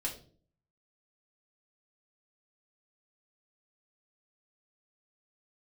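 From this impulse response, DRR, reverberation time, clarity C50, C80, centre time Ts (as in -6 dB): -2.0 dB, 0.45 s, 9.5 dB, 14.0 dB, 18 ms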